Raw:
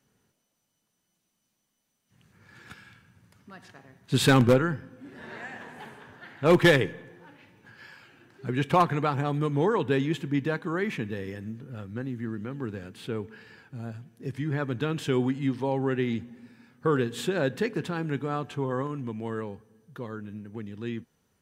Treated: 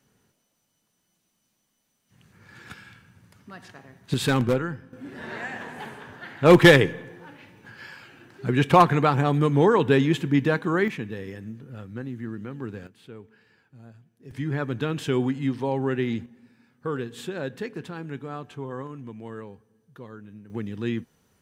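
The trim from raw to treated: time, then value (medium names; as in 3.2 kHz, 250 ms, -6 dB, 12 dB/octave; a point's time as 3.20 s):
+4 dB
from 4.14 s -3 dB
from 4.93 s +6 dB
from 10.88 s -0.5 dB
from 12.87 s -10.5 dB
from 14.31 s +1.5 dB
from 16.26 s -5 dB
from 20.50 s +6 dB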